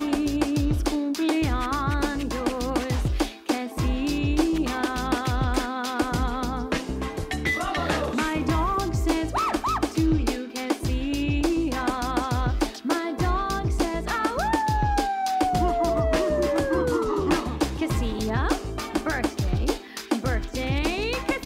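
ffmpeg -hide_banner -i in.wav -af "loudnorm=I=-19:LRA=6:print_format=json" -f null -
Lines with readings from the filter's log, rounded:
"input_i" : "-25.7",
"input_tp" : "-8.7",
"input_lra" : "3.0",
"input_thresh" : "-35.7",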